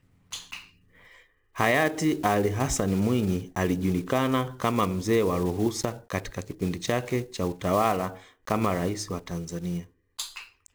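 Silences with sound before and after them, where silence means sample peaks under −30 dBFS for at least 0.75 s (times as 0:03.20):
0:00.57–0:01.59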